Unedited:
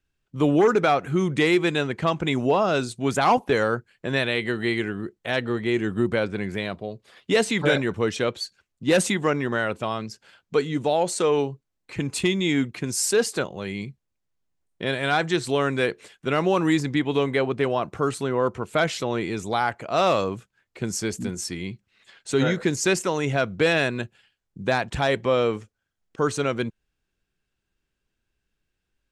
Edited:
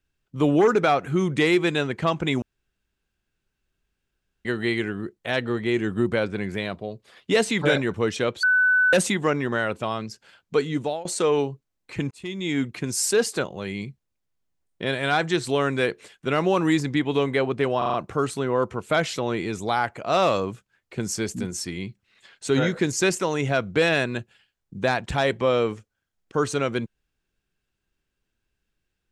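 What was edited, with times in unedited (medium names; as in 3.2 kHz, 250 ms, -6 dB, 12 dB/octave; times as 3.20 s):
2.42–4.45 s: room tone
8.43–8.93 s: bleep 1.5 kHz -15.5 dBFS
10.78–11.05 s: fade out, to -23.5 dB
12.11–12.70 s: fade in
17.78 s: stutter 0.04 s, 5 plays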